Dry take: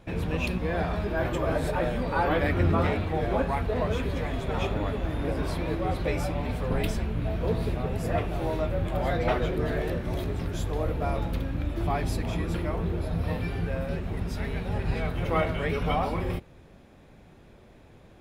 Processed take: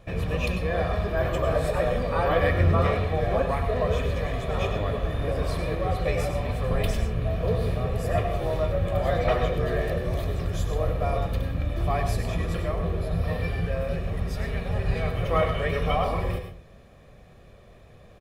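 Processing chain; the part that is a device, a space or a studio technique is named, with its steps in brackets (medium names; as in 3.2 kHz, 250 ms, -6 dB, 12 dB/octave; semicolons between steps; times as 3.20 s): microphone above a desk (comb 1.7 ms, depth 52%; reverberation RT60 0.30 s, pre-delay 91 ms, DRR 6.5 dB)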